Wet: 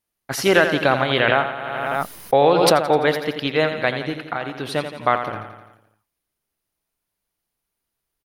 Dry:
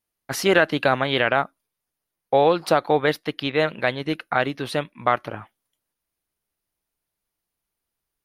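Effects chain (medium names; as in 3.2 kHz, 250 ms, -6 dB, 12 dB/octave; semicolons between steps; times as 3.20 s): 3.91–4.76 s: compression 6:1, threshold -24 dBFS, peak gain reduction 9.5 dB; feedback delay 85 ms, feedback 59%, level -9 dB; 1.22–2.75 s: swell ahead of each attack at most 22 dB/s; trim +1.5 dB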